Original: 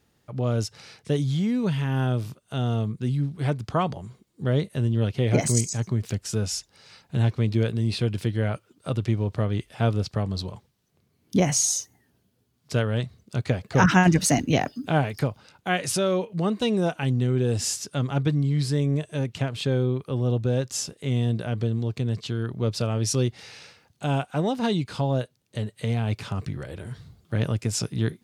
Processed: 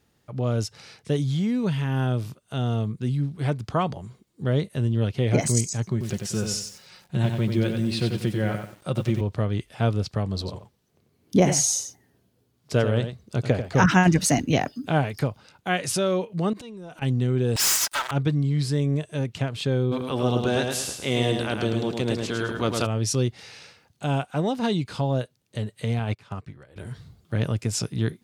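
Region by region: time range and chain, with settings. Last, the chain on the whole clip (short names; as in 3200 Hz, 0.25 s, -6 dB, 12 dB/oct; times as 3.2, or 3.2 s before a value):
5.91–9.21 comb 5.5 ms, depth 47% + lo-fi delay 92 ms, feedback 35%, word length 8-bit, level -5.5 dB
10.32–13.71 bell 450 Hz +4.5 dB 1.9 oct + echo 91 ms -9 dB
16.53–17.02 compressor 16:1, threshold -35 dBFS + transient shaper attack -11 dB, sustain +6 dB
17.56–18.11 minimum comb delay 3.1 ms + HPF 950 Hz 24 dB/oct + sample leveller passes 5
19.91–22.85 spectral limiter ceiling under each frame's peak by 18 dB + feedback echo 0.107 s, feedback 36%, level -4.5 dB
25.99–26.76 bell 1200 Hz +5.5 dB 2.7 oct + upward expander 2.5:1, over -35 dBFS
whole clip: dry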